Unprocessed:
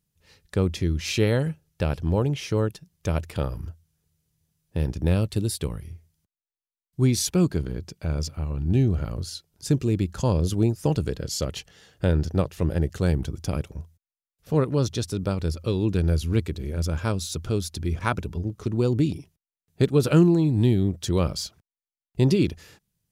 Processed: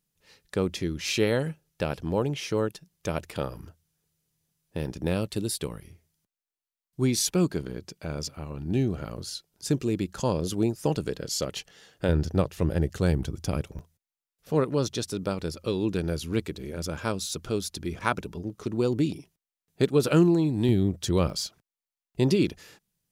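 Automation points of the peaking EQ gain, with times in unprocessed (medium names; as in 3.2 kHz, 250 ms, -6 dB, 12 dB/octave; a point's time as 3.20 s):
peaking EQ 73 Hz 1.7 oct
-13.5 dB
from 12.09 s -3 dB
from 13.79 s -13.5 dB
from 20.69 s -3.5 dB
from 21.30 s -11.5 dB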